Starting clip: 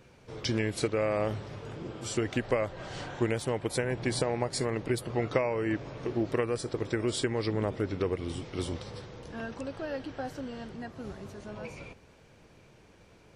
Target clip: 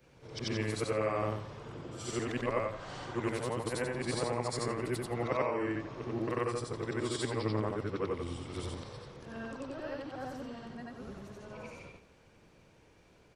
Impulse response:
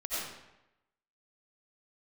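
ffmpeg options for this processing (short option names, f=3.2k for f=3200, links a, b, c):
-filter_complex "[0:a]afftfilt=real='re':imag='-im':win_size=8192:overlap=0.75,adynamicequalizer=threshold=0.00141:dfrequency=1100:dqfactor=3.1:tfrequency=1100:tqfactor=3.1:attack=5:release=100:ratio=0.375:range=4:mode=boostabove:tftype=bell,asplit=2[a][b];[b]aecho=0:1:170:0.0841[c];[a][c]amix=inputs=2:normalize=0"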